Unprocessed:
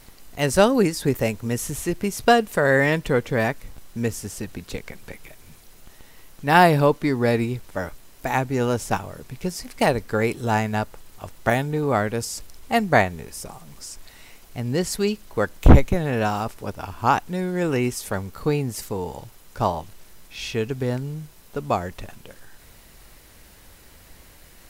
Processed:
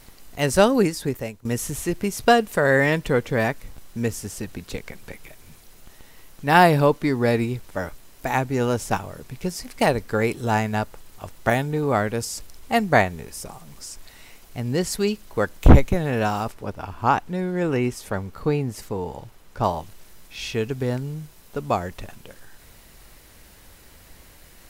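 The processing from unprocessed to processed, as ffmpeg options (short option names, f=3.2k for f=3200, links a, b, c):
-filter_complex "[0:a]asettb=1/sr,asplit=3[a][b][c];[a]atrim=end=16.524[d];[b]atrim=start=16.52:end=19.64,asetpts=PTS-STARTPTS,afade=t=in:d=0.004:c=qsin,afade=t=out:st=3.116:d=0.004:c=qsin,highshelf=f=4.2k:g=-8.5[e];[c]atrim=start=19.636[f];[d][e]acrossfade=d=0.004:c1=hsin:c2=qsin[g];[g][f]acrossfade=d=0.004:c1=qsin:c2=hsin,asplit=2[h][i];[h]atrim=end=1.45,asetpts=PTS-STARTPTS,afade=t=out:st=0.81:d=0.64:silence=0.125893[j];[i]atrim=start=1.45,asetpts=PTS-STARTPTS,afade=t=in:d=0.004:c=hsin:silence=0.125893[k];[j][k]concat=n=2:v=0:a=1"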